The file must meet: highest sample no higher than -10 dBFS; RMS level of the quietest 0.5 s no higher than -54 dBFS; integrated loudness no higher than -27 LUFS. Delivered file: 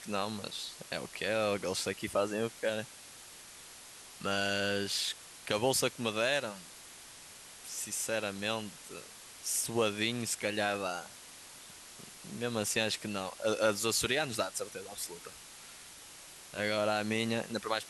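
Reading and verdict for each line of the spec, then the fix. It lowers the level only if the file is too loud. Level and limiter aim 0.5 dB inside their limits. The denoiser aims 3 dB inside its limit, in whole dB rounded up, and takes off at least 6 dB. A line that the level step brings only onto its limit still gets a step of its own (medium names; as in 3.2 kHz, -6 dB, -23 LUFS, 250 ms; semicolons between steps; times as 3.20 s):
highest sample -13.0 dBFS: pass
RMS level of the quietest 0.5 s -52 dBFS: fail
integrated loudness -33.5 LUFS: pass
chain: noise reduction 6 dB, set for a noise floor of -52 dBFS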